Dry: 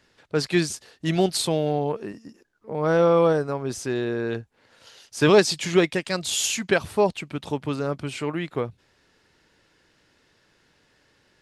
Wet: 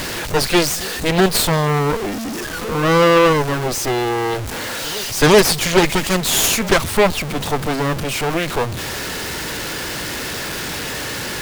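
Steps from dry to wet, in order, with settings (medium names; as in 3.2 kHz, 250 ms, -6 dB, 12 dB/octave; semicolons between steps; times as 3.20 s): jump at every zero crossing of -21.5 dBFS; Chebyshev shaper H 8 -9 dB, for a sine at -4.5 dBFS; reverse echo 377 ms -21.5 dB; trim +1.5 dB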